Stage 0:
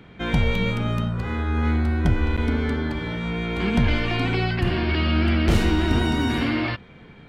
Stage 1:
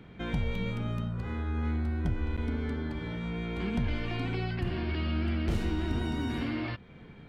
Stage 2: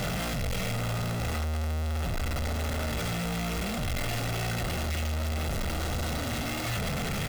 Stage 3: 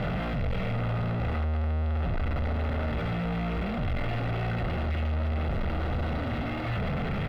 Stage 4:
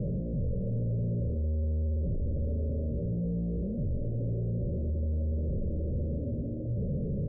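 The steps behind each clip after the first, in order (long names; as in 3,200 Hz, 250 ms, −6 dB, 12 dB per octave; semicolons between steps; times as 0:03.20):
low-shelf EQ 480 Hz +4.5 dB; downward compressor 1.5 to 1, threshold −32 dBFS, peak gain reduction 8.5 dB; level −7 dB
sign of each sample alone; comb filter 1.5 ms, depth 50%
high-frequency loss of the air 440 metres; level +2.5 dB
Chebyshev low-pass with heavy ripple 580 Hz, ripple 3 dB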